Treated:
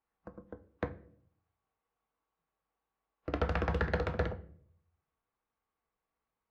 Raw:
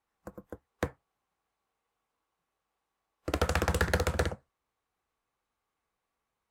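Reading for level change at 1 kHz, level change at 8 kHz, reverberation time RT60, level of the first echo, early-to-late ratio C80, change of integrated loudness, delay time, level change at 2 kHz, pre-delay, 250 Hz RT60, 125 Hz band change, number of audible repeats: -4.0 dB, under -20 dB, 0.60 s, none, 21.0 dB, -4.0 dB, none, -5.5 dB, 4 ms, 0.75 s, -3.0 dB, none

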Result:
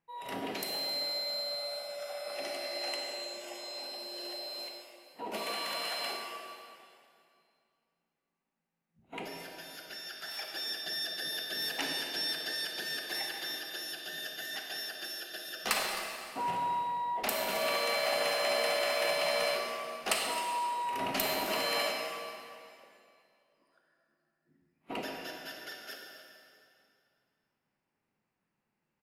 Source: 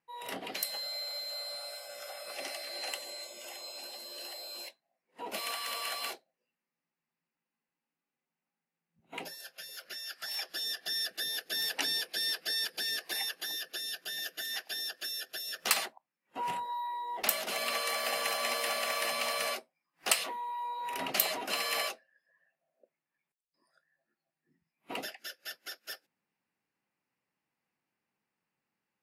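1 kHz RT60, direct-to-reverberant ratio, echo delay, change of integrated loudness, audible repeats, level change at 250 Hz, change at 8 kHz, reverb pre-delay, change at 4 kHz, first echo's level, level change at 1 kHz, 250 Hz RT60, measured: 2.4 s, 0.5 dB, 0.263 s, 0.0 dB, 1, +6.0 dB, -3.5 dB, 29 ms, 0.0 dB, -14.5 dB, +2.5 dB, 2.6 s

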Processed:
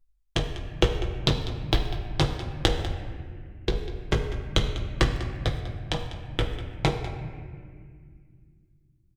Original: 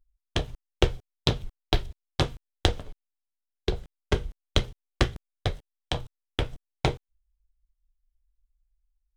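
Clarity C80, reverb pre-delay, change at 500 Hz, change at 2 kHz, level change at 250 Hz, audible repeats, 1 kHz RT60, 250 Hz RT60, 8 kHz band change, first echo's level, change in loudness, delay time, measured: 7.5 dB, 6 ms, +2.0 dB, +2.0 dB, +3.0 dB, 1, 1.7 s, 3.5 s, +1.5 dB, -14.5 dB, +1.5 dB, 0.197 s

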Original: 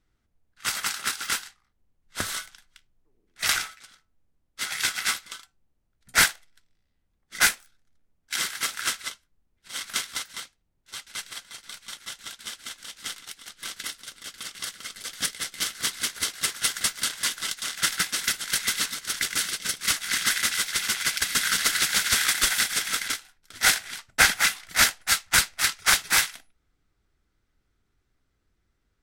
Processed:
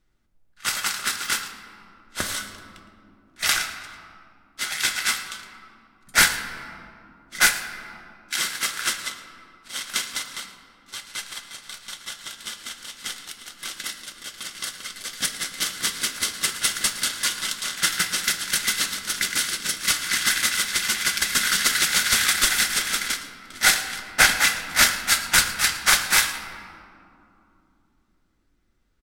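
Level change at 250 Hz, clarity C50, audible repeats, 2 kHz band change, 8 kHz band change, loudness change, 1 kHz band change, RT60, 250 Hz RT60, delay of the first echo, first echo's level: +4.0 dB, 8.5 dB, 1, +3.0 dB, +2.5 dB, +2.5 dB, +3.0 dB, 2.9 s, 4.6 s, 0.112 s, -17.5 dB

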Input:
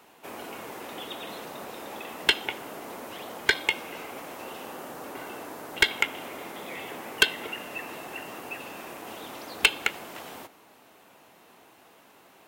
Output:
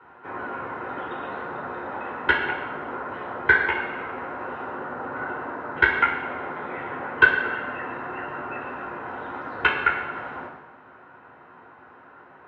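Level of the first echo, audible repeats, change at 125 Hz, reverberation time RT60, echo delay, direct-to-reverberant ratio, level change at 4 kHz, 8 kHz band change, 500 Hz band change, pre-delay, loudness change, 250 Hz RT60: none, none, +8.5 dB, 1.1 s, none, -5.0 dB, -9.5 dB, under -30 dB, +5.0 dB, 3 ms, +4.5 dB, 1.0 s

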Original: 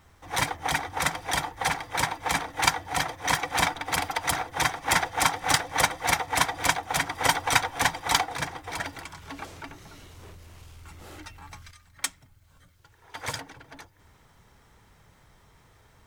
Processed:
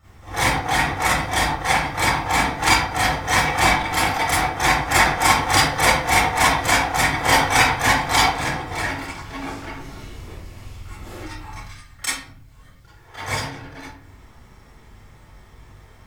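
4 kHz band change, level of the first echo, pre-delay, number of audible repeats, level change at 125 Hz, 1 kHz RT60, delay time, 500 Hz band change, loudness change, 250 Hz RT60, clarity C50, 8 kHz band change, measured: +6.5 dB, none, 27 ms, none, +11.0 dB, 0.50 s, none, +9.0 dB, +8.0 dB, 0.70 s, -1.5 dB, +5.5 dB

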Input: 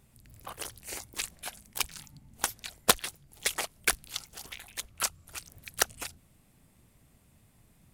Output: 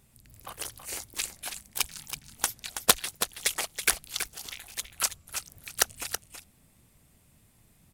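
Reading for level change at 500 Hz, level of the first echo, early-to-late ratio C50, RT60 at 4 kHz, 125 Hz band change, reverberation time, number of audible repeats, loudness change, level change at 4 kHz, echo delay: -0.5 dB, -9.0 dB, none, none, -0.5 dB, none, 1, +2.5 dB, +2.5 dB, 0.326 s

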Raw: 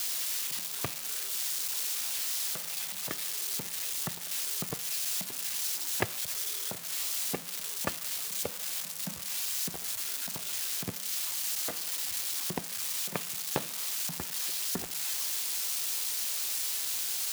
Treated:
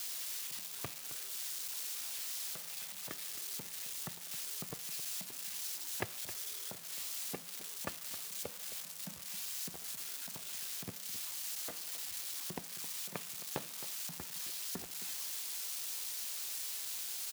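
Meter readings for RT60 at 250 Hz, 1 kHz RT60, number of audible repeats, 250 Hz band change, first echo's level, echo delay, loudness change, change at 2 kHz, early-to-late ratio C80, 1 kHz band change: none, none, 1, -8.5 dB, -14.0 dB, 0.266 s, -8.5 dB, -8.5 dB, none, -8.5 dB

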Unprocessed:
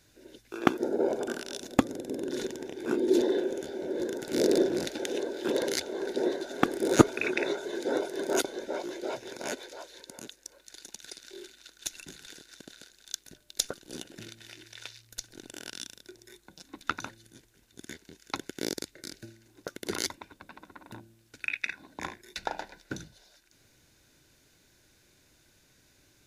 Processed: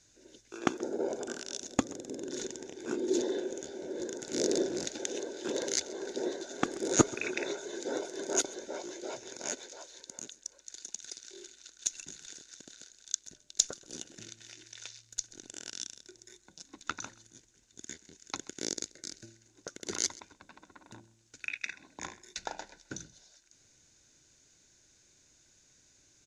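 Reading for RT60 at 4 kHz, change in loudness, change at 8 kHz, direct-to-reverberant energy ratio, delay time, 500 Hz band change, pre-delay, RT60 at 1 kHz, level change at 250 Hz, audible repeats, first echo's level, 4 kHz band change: none, -4.5 dB, +5.0 dB, none, 0.131 s, -6.0 dB, none, none, -6.0 dB, 1, -21.5 dB, -2.0 dB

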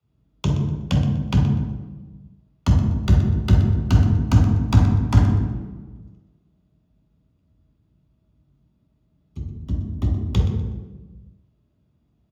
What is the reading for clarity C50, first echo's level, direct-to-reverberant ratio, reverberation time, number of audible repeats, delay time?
3.0 dB, -12.5 dB, 0.0 dB, 1.2 s, 1, 0.123 s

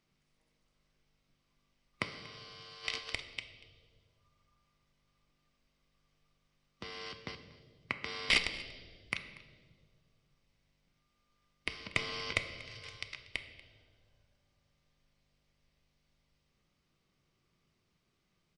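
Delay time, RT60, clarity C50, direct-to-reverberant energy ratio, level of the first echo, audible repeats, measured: 0.238 s, 1.9 s, 10.5 dB, 8.5 dB, -21.0 dB, 1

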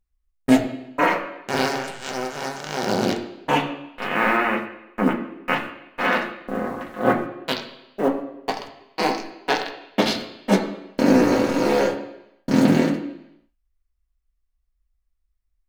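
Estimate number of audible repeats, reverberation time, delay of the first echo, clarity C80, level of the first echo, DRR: none, 0.85 s, none, 10.5 dB, none, 1.5 dB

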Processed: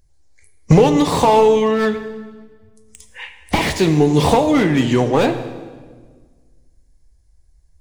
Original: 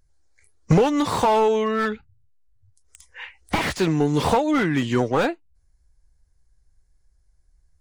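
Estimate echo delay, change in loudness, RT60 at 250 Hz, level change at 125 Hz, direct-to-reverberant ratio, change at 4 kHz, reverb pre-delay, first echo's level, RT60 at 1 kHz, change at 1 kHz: none, +6.0 dB, 2.0 s, +7.0 dB, 8.5 dB, +6.0 dB, 5 ms, none, 1.4 s, +4.5 dB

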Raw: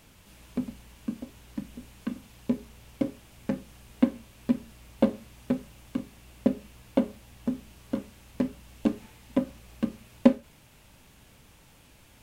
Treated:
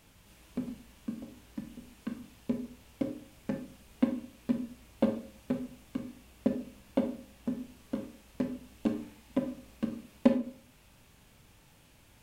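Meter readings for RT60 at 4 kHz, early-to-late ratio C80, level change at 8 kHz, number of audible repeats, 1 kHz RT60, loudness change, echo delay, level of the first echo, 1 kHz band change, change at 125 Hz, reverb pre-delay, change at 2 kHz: 0.35 s, 15.5 dB, n/a, none, 0.50 s, -4.5 dB, none, none, -4.5 dB, -4.5 dB, 19 ms, -4.0 dB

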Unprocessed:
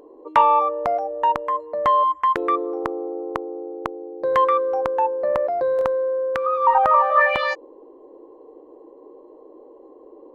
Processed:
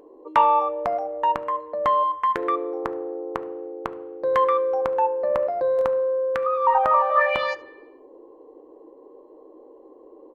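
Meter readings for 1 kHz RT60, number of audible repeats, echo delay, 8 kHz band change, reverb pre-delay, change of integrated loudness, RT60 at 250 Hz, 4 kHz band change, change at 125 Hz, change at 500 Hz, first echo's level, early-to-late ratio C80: 0.85 s, 1, 73 ms, n/a, 3 ms, -2.0 dB, 0.80 s, -2.0 dB, n/a, -1.0 dB, -21.5 dB, 19.5 dB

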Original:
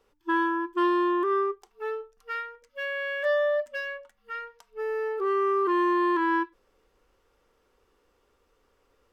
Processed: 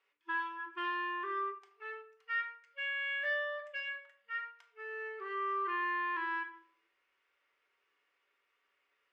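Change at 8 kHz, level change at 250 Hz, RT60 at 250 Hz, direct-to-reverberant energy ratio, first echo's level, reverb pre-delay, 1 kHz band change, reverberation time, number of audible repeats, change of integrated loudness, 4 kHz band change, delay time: n/a, -23.0 dB, 0.75 s, 3.5 dB, none, 3 ms, -9.5 dB, 0.65 s, none, -9.5 dB, -3.5 dB, none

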